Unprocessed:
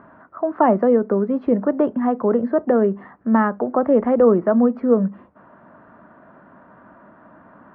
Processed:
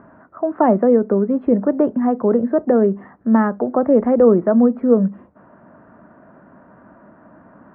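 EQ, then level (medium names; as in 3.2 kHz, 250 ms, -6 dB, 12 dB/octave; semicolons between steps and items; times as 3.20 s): distance through air 500 m; peaking EQ 1.1 kHz -3.5 dB 0.85 oct; +3.5 dB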